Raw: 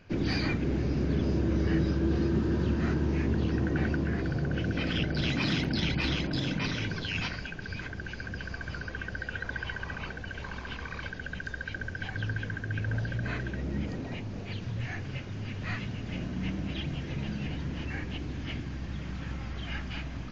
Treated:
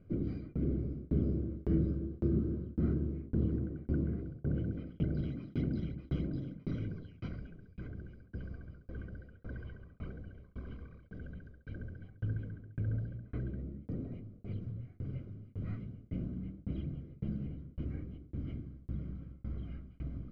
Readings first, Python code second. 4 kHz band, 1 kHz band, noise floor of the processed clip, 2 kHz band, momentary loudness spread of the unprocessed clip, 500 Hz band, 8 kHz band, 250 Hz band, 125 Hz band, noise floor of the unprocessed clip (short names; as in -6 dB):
under -25 dB, -20.0 dB, -59 dBFS, -24.0 dB, 10 LU, -8.0 dB, n/a, -6.0 dB, -5.0 dB, -41 dBFS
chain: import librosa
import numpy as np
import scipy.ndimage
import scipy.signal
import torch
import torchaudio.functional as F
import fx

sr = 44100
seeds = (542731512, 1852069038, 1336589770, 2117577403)

y = np.convolve(x, np.full(50, 1.0 / 50))[:len(x)]
y = fx.tremolo_shape(y, sr, shape='saw_down', hz=1.8, depth_pct=100)